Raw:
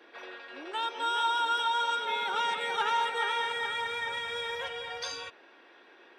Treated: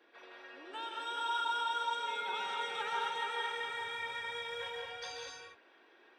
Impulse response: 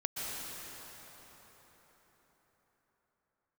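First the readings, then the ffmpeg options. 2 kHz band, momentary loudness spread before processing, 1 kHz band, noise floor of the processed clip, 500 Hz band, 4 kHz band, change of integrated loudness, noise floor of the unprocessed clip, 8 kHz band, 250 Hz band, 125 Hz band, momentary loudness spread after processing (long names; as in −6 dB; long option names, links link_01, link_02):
−6.5 dB, 13 LU, −6.5 dB, −64 dBFS, −6.5 dB, −7.0 dB, −6.5 dB, −57 dBFS, −6.5 dB, −7.5 dB, can't be measured, 15 LU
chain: -filter_complex "[1:a]atrim=start_sample=2205,afade=type=out:start_time=0.31:duration=0.01,atrim=end_sample=14112[link_01];[0:a][link_01]afir=irnorm=-1:irlink=0,volume=-8.5dB"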